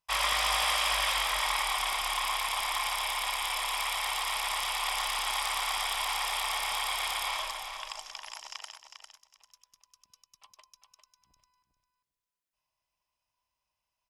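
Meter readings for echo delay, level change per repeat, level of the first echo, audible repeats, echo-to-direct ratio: 0.401 s, -16.0 dB, -8.0 dB, 2, -8.0 dB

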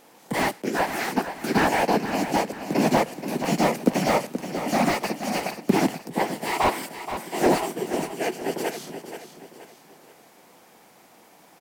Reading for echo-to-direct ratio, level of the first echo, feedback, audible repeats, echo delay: -9.5 dB, -10.0 dB, 39%, 4, 0.477 s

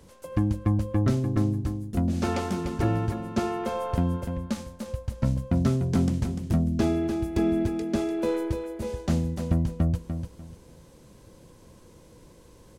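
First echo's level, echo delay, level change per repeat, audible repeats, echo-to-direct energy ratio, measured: -7.5 dB, 0.296 s, -12.0 dB, 3, -7.0 dB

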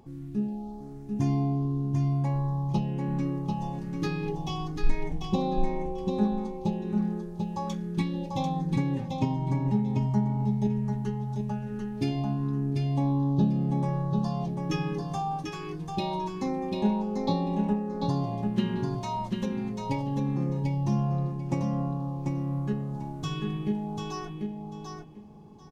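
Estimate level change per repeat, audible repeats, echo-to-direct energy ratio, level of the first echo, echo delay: -14.5 dB, 2, -4.5 dB, -4.5 dB, 0.742 s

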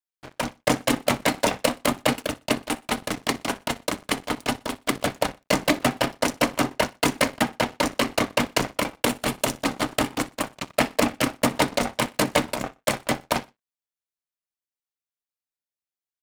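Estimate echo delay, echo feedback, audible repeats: 61 ms, 32%, 2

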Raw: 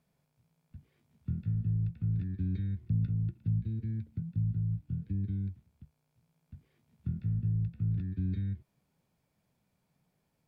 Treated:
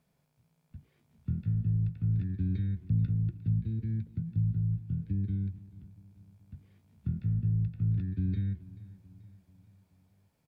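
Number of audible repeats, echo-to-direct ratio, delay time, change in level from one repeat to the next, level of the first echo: 3, -18.0 dB, 0.434 s, -5.5 dB, -19.5 dB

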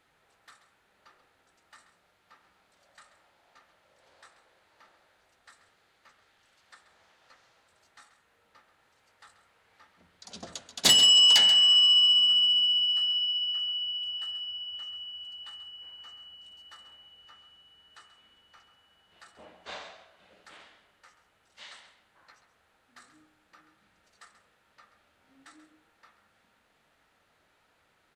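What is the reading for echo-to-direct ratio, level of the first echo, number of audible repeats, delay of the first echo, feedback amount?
-12.5 dB, -12.5 dB, 1, 0.134 s, no steady repeat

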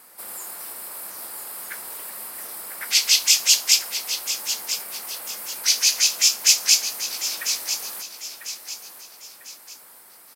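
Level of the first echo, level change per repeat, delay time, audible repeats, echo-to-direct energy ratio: -10.0 dB, -8.0 dB, 0.997 s, 3, -9.5 dB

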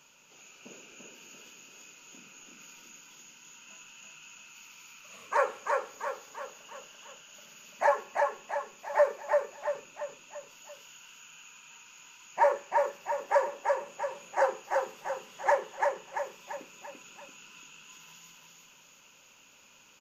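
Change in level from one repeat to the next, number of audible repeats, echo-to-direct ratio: -6.0 dB, 5, -2.0 dB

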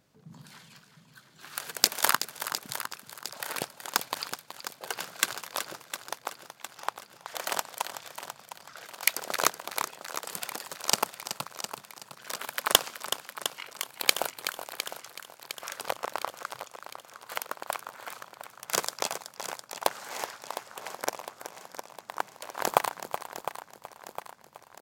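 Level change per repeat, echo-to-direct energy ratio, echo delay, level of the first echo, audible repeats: no steady repeat, -7.0 dB, 0.375 s, -11.0 dB, 9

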